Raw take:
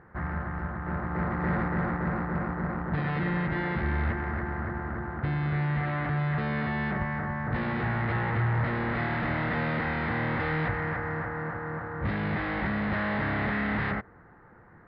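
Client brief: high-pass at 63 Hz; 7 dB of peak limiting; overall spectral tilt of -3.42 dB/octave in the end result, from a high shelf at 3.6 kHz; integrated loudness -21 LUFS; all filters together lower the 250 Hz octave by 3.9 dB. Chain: high-pass 63 Hz; peaking EQ 250 Hz -6 dB; treble shelf 3.6 kHz -6.5 dB; trim +13 dB; peak limiter -12.5 dBFS

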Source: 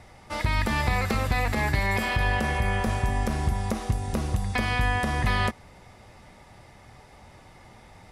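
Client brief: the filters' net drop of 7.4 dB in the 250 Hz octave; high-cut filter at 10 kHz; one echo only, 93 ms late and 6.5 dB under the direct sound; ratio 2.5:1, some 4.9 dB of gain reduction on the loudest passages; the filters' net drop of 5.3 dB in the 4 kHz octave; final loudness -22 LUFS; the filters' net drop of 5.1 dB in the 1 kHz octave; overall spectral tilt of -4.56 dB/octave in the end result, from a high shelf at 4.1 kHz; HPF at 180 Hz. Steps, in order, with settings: high-pass 180 Hz; low-pass 10 kHz; peaking EQ 250 Hz -7 dB; peaking EQ 1 kHz -6 dB; peaking EQ 4 kHz -4.5 dB; treble shelf 4.1 kHz -3.5 dB; compression 2.5:1, threshold -35 dBFS; delay 93 ms -6.5 dB; trim +14 dB

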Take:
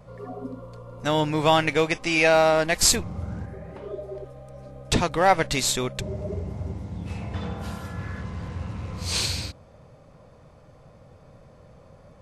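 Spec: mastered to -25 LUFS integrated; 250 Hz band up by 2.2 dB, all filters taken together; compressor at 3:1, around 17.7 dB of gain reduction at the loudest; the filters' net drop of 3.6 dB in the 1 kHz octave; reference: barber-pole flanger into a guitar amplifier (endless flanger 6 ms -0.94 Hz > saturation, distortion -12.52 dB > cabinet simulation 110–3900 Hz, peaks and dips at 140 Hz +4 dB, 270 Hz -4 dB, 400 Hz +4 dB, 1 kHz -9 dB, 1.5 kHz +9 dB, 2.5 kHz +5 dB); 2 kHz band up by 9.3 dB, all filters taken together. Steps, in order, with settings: peaking EQ 250 Hz +4.5 dB; peaking EQ 1 kHz -7.5 dB; peaking EQ 2 kHz +8 dB; compression 3:1, threshold -39 dBFS; endless flanger 6 ms -0.94 Hz; saturation -37 dBFS; cabinet simulation 110–3900 Hz, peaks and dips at 140 Hz +4 dB, 270 Hz -4 dB, 400 Hz +4 dB, 1 kHz -9 dB, 1.5 kHz +9 dB, 2.5 kHz +5 dB; trim +19.5 dB

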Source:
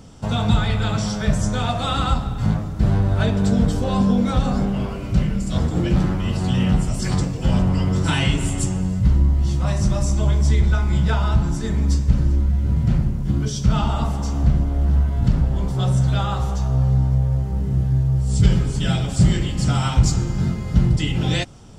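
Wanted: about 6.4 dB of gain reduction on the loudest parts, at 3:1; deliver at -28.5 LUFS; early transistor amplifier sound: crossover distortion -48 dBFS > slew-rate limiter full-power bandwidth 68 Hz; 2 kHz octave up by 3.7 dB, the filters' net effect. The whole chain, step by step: peaking EQ 2 kHz +5 dB; compression 3:1, threshold -18 dBFS; crossover distortion -48 dBFS; slew-rate limiter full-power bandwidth 68 Hz; trim -5 dB

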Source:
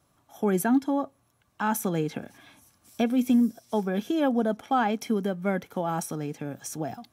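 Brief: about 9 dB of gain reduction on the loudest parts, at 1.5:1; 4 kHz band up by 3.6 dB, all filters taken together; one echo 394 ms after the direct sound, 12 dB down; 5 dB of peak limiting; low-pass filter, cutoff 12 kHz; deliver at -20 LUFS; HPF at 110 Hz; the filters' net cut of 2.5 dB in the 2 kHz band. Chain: high-pass 110 Hz; low-pass 12 kHz; peaking EQ 2 kHz -5 dB; peaking EQ 4 kHz +7 dB; compression 1.5:1, threshold -44 dBFS; peak limiter -26.5 dBFS; delay 394 ms -12 dB; trim +17 dB

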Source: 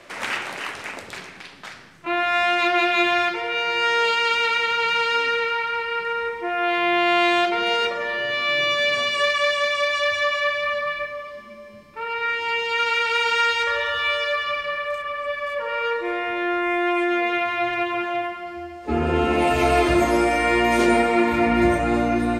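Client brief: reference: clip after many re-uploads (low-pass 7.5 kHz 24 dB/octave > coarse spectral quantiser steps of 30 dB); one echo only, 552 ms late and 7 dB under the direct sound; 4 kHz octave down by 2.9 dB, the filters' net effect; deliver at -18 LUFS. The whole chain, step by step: low-pass 7.5 kHz 24 dB/octave; peaking EQ 4 kHz -4.5 dB; delay 552 ms -7 dB; coarse spectral quantiser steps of 30 dB; trim +3.5 dB

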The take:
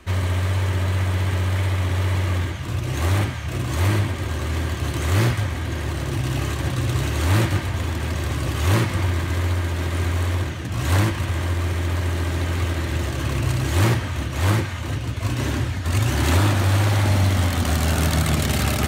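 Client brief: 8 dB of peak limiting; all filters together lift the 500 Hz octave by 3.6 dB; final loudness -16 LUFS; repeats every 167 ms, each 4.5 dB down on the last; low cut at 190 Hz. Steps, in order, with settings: high-pass 190 Hz; peaking EQ 500 Hz +5 dB; peak limiter -15.5 dBFS; feedback delay 167 ms, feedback 60%, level -4.5 dB; trim +9.5 dB

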